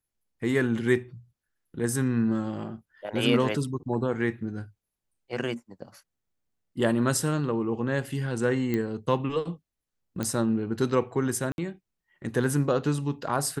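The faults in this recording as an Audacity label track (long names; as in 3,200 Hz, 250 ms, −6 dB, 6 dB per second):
8.740000	8.740000	click −16 dBFS
10.230000	10.230000	click −15 dBFS
11.520000	11.580000	drop-out 61 ms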